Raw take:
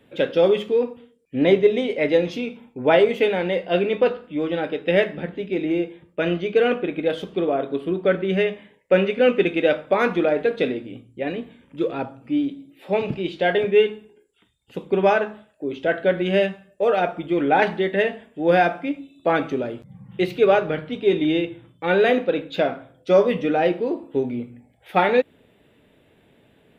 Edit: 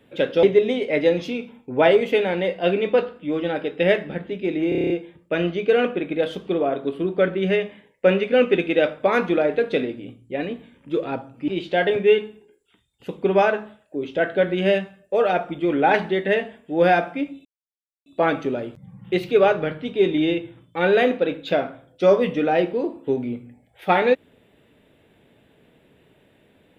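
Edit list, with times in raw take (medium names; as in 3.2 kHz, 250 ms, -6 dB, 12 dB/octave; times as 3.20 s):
0.43–1.51 s: delete
5.77 s: stutter 0.03 s, 8 plays
12.35–13.16 s: delete
19.13 s: insert silence 0.61 s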